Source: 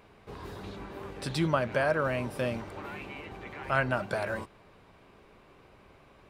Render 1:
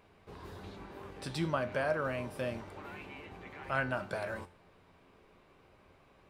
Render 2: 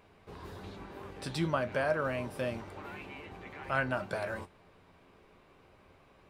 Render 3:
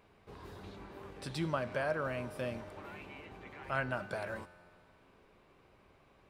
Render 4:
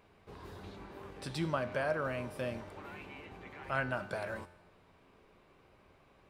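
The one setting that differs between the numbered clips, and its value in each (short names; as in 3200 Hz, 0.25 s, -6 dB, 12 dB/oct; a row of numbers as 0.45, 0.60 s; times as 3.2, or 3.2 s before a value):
resonator, decay: 0.39, 0.17, 2.2, 0.89 s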